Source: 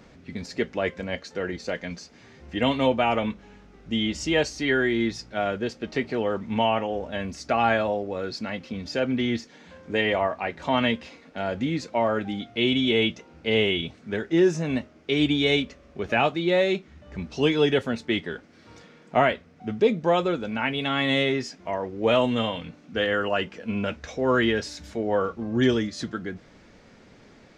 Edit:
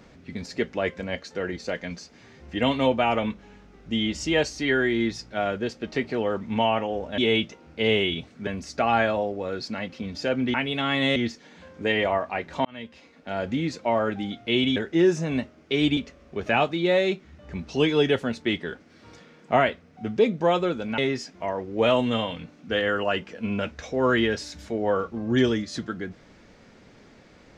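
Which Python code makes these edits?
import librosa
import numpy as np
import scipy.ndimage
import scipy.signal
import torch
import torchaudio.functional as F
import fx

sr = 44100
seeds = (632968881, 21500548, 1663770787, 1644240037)

y = fx.edit(x, sr, fx.fade_in_span(start_s=10.74, length_s=0.78),
    fx.move(start_s=12.85, length_s=1.29, to_s=7.18),
    fx.cut(start_s=15.35, length_s=0.25),
    fx.move(start_s=20.61, length_s=0.62, to_s=9.25), tone=tone)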